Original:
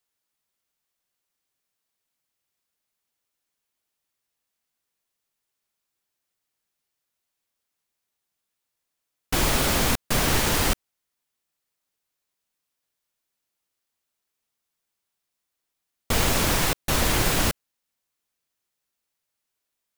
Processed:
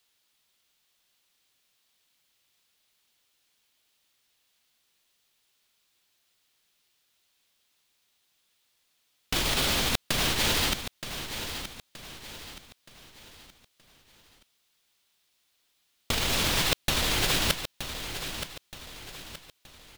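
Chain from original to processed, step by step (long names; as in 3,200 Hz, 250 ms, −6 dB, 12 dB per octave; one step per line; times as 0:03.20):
parametric band 3,500 Hz +9 dB 1.3 octaves
compressor whose output falls as the input rises −24 dBFS, ratio −0.5
repeating echo 923 ms, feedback 40%, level −10 dB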